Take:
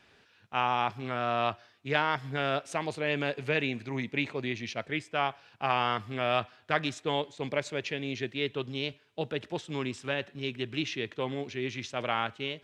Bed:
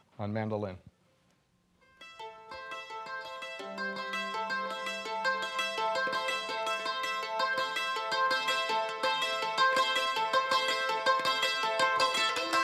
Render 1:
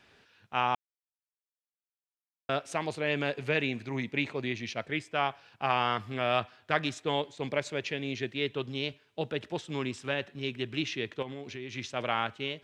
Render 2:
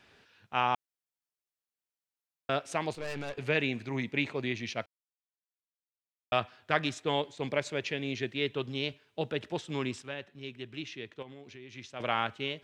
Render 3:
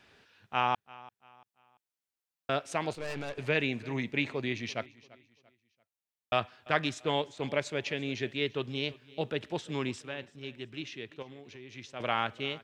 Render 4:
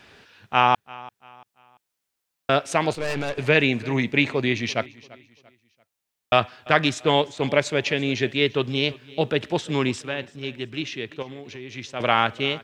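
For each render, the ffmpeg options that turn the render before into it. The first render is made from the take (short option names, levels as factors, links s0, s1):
-filter_complex "[0:a]asettb=1/sr,asplit=3[s0][s1][s2];[s0]atrim=end=11.224[s3];[s1]atrim=start=11.22:end=11.74,asetpts=PTS-STARTPTS,afade=t=in:d=0.004:c=qsin,afade=t=out:st=0.516:d=0.004:c=qsin,acompressor=threshold=0.0158:ratio=5:attack=3.2:release=140:knee=1:detection=peak[s4];[s2]atrim=start=11.736[s5];[s3][s4]acrossfade=d=0.004:c1=hsin:c2=qsin[s6];[s6][s5]acrossfade=d=0.004:c1=qsin:c2=hsin,asplit=3[s7][s8][s9];[s7]atrim=end=0.75,asetpts=PTS-STARTPTS,afade=t=out:st=0.746:d=0.004:c=hsin[s10];[s8]atrim=start=0.75:end=2.49,asetpts=PTS-STARTPTS,volume=0[s11];[s9]atrim=start=2.49,asetpts=PTS-STARTPTS,afade=t=in:d=0.004:c=hsin[s12];[s10][s11][s12]concat=n=3:v=0:a=1"
-filter_complex "[0:a]asettb=1/sr,asplit=3[s0][s1][s2];[s0]atrim=end=2.934[s3];[s1]atrim=start=2.93:end=3.38,asetpts=PTS-STARTPTS,afade=t=in:d=0.004:c=qsin,afade=t=out:st=0.446:d=0.004:c=qsin,aeval=exprs='(tanh(44.7*val(0)+0.7)-tanh(0.7))/44.7':c=same[s4];[s2]atrim=start=3.376[s5];[s3][s4]acrossfade=d=0.004:c1=hsin:c2=qsin[s6];[s6][s5]acrossfade=d=0.004:c1=qsin:c2=hsin,asplit=5[s7][s8][s9][s10][s11];[s7]atrim=end=4.86,asetpts=PTS-STARTPTS,afade=t=out:st=4.856:d=0.004:c=hsin[s12];[s8]atrim=start=4.86:end=6.32,asetpts=PTS-STARTPTS,volume=0[s13];[s9]atrim=start=6.32:end=10.022,asetpts=PTS-STARTPTS,afade=t=in:d=0.004:c=hsin[s14];[s10]atrim=start=10.018:end=12.002,asetpts=PTS-STARTPTS,volume=0.398[s15];[s11]atrim=start=11.998[s16];[s12][s13][s14]concat=n=3:v=0:a=1[s17];[s17][s15]acrossfade=d=0.004:c1=hsin:c2=hsin[s18];[s18][s16]acrossfade=d=0.004:c1=hsin:c2=hsin"
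-af "aecho=1:1:341|682|1023:0.0891|0.0321|0.0116"
-af "volume=3.35,alimiter=limit=0.794:level=0:latency=1"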